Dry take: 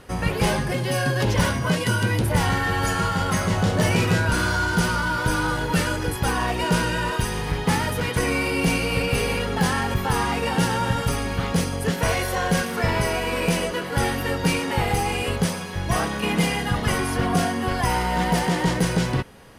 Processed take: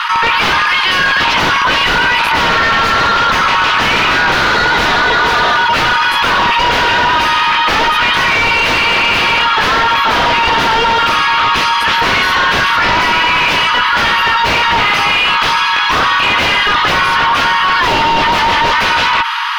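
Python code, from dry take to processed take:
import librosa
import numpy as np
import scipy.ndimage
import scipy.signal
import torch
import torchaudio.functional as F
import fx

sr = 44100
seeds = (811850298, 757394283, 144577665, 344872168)

y = fx.rattle_buzz(x, sr, strikes_db=-21.0, level_db=-19.0)
y = scipy.signal.sosfilt(scipy.signal.cheby1(6, 6, 890.0, 'highpass', fs=sr, output='sos'), y)
y = fx.high_shelf(y, sr, hz=11000.0, db=11.0)
y = fx.fold_sine(y, sr, drive_db=15, ceiling_db=-14.5)
y = fx.air_absorb(y, sr, metres=280.0)
y = fx.env_flatten(y, sr, amount_pct=70)
y = F.gain(torch.from_numpy(y), 8.5).numpy()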